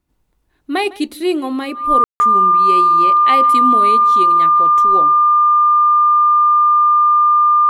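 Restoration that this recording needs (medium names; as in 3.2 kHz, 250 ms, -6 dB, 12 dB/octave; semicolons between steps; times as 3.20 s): band-stop 1.2 kHz, Q 30; room tone fill 2.04–2.20 s; inverse comb 155 ms -21 dB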